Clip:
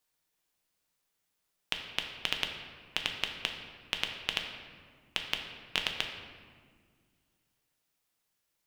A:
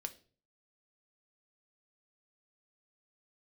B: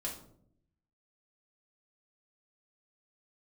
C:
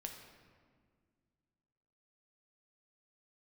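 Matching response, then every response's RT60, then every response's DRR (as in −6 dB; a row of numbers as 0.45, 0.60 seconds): C; 0.40, 0.65, 1.9 seconds; 7.0, −3.5, 2.5 decibels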